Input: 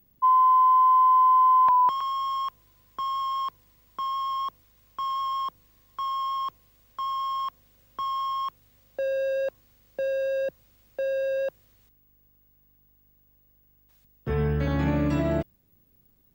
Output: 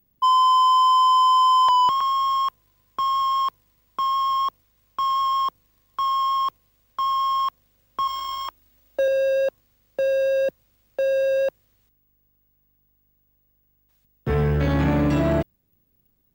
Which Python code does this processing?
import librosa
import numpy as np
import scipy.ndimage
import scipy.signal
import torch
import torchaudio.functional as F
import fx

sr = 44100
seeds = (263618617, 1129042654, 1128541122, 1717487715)

y = fx.leveller(x, sr, passes=2)
y = fx.comb(y, sr, ms=3.2, depth=0.78, at=(8.07, 9.08))